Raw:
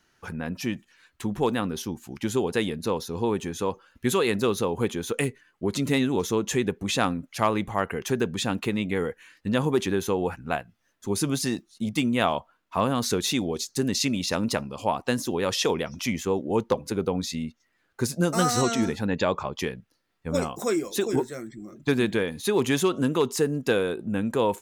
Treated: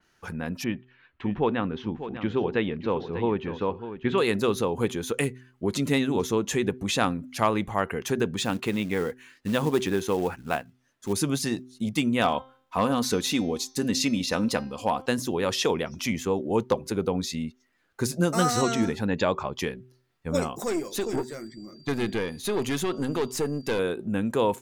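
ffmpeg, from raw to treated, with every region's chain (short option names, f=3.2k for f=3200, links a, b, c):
-filter_complex "[0:a]asettb=1/sr,asplit=3[a][b][c];[a]atrim=end=0.644[d];[b]atrim=start=0.64:end=4.18,asetpts=PTS-STARTPTS,afade=t=in:d=0.004:c=qsin,afade=t=out:st=3.536:d=0.004:c=qsin,lowpass=f=3.1k:w=0.5412,lowpass=f=3.1k:w=1.3066,aecho=1:1:596:0.266,atrim=end_sample=156114[e];[c]atrim=start=4.176[f];[d][e]acrossfade=d=0.004:c1=hsin:c2=qsin[g];[g][f]acrossfade=d=0.004:c1=qsin:c2=hsin,asettb=1/sr,asplit=3[h][i][j];[h]atrim=end=8.374[k];[i]atrim=start=8.37:end=11.13,asetpts=PTS-STARTPTS,afade=t=in:d=0.004:c=qsin,afade=t=out:st=2.756:d=0.004:c=qsin,lowpass=12k,lowshelf=f=70:g=-6.5,acrusher=bits=5:mode=log:mix=0:aa=0.000001[l];[j]atrim=start=11.126[m];[k][l]acrossfade=d=0.004:c1=hsin:c2=qsin[n];[n][m]acrossfade=d=0.004:c1=qsin:c2=hsin,asettb=1/sr,asplit=3[o][p][q];[o]atrim=end=12.214[r];[p]atrim=start=12.21:end=15.06,asetpts=PTS-STARTPTS,afade=t=in:d=0.004:c=qsin,afade=t=out:st=2.846:d=0.004:c=qsin,aecho=1:1:4:0.35,atrim=end_sample=125685,bandreject=f=262.2:t=h:w=4,bandreject=f=524.4:t=h:w=4,bandreject=f=786.6:t=h:w=4,bandreject=f=1.0488k:t=h:w=4,bandreject=f=1.311k:t=h:w=4,bandreject=f=1.5732k:t=h:w=4,bandreject=f=1.8354k:t=h:w=4,bandreject=f=2.0976k:t=h:w=4,bandreject=f=2.3598k:t=h:w=4,bandreject=f=2.622k:t=h:w=4,bandreject=f=2.8842k:t=h:w=4,bandreject=f=3.1464k:t=h:w=4,bandreject=f=3.4086k:t=h:w=4,bandreject=f=3.6708k:t=h:w=4,bandreject=f=3.933k:t=h:w=4,bandreject=f=4.1952k:t=h:w=4,bandreject=f=4.4574k:t=h:w=4,bandreject=f=4.7196k:t=h:w=4,bandreject=f=4.9818k:t=h:w=4,bandreject=f=5.244k:t=h:w=4,bandreject=f=5.5062k:t=h:w=4,bandreject=f=5.7684k:t=h:w=4,bandreject=f=6.0306k:t=h:w=4,bandreject=f=6.2928k:t=h:w=4,volume=13.5dB,asoftclip=hard,volume=-13.5dB[s];[q]atrim=start=15.056[t];[r][s]acrossfade=d=0.004:c1=hsin:c2=qsin[u];[u][t]acrossfade=d=0.004:c1=qsin:c2=hsin,asettb=1/sr,asplit=3[v][w][x];[v]atrim=end=20.634[y];[w]atrim=start=20.63:end=23.79,asetpts=PTS-STARTPTS,afade=t=in:d=0.004:c=qsin,afade=t=out:st=3.156:d=0.004:c=qsin,aeval=exprs='(tanh(11.2*val(0)+0.4)-tanh(0.4))/11.2':c=same,aeval=exprs='val(0)+0.002*sin(2*PI*4700*n/s)':c=same[z];[x]atrim=start=23.786[aa];[y][z]acrossfade=d=0.004:c1=hsin:c2=qsin[ab];[ab][aa]acrossfade=d=0.004:c1=qsin:c2=hsin,bandreject=f=126.9:t=h:w=4,bandreject=f=253.8:t=h:w=4,bandreject=f=380.7:t=h:w=4,adynamicequalizer=threshold=0.0112:dfrequency=4000:dqfactor=0.7:tfrequency=4000:tqfactor=0.7:attack=5:release=100:ratio=0.375:range=2:mode=cutabove:tftype=highshelf"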